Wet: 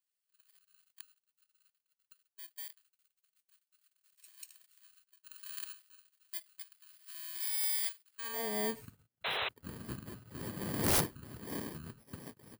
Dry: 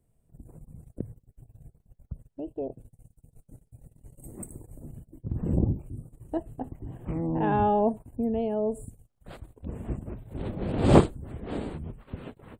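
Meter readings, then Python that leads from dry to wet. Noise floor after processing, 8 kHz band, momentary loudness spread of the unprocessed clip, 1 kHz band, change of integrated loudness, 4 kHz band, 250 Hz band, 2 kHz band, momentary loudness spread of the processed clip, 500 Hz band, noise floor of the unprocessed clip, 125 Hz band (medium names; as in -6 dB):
under -85 dBFS, +9.5 dB, 22 LU, -13.5 dB, -7.0 dB, no reading, -15.5 dB, +1.5 dB, 22 LU, -14.5 dB, -72 dBFS, -16.0 dB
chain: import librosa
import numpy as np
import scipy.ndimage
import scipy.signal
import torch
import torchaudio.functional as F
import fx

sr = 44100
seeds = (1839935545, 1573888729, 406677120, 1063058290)

y = fx.bit_reversed(x, sr, seeds[0], block=32)
y = fx.filter_sweep_highpass(y, sr, from_hz=2900.0, to_hz=120.0, start_s=8.11, end_s=8.61, q=0.79)
y = fx.spec_paint(y, sr, seeds[1], shape='noise', start_s=9.24, length_s=0.25, low_hz=380.0, high_hz=4100.0, level_db=-28.0)
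y = (np.mod(10.0 ** (15.0 / 20.0) * y + 1.0, 2.0) - 1.0) / 10.0 ** (15.0 / 20.0)
y = y * 10.0 ** (-7.0 / 20.0)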